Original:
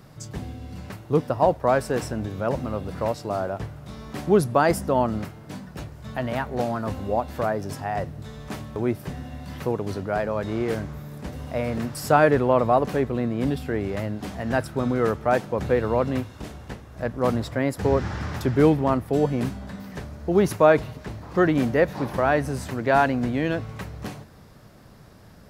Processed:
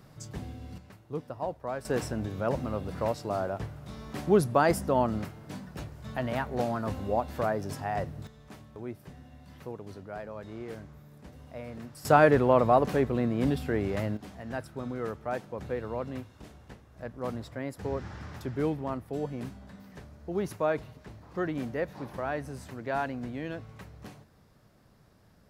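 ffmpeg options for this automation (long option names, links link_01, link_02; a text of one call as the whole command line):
ffmpeg -i in.wav -af "asetnsamples=nb_out_samples=441:pad=0,asendcmd='0.78 volume volume -14.5dB;1.85 volume volume -4dB;8.27 volume volume -14.5dB;12.05 volume volume -2.5dB;14.17 volume volume -12dB',volume=-5.5dB" out.wav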